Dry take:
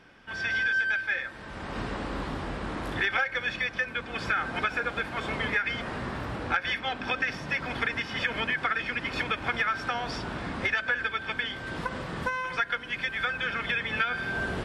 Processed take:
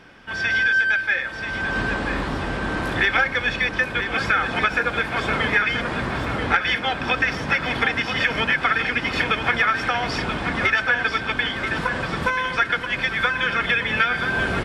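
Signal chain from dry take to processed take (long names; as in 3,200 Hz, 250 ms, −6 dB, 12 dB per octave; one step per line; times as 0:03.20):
repeating echo 983 ms, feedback 48%, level −8 dB
level +7.5 dB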